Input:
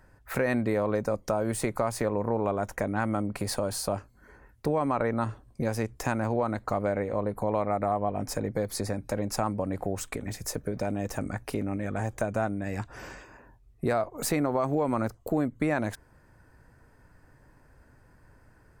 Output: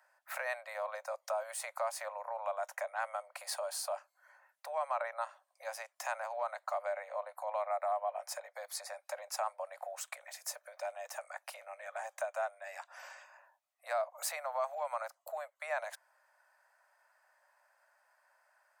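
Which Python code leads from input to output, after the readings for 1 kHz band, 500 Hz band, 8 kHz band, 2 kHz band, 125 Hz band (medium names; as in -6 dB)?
-5.5 dB, -10.0 dB, -5.5 dB, -5.5 dB, under -40 dB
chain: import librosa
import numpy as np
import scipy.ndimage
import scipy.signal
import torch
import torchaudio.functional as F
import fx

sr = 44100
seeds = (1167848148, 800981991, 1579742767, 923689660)

y = scipy.signal.sosfilt(scipy.signal.butter(16, 570.0, 'highpass', fs=sr, output='sos'), x)
y = F.gain(torch.from_numpy(y), -5.5).numpy()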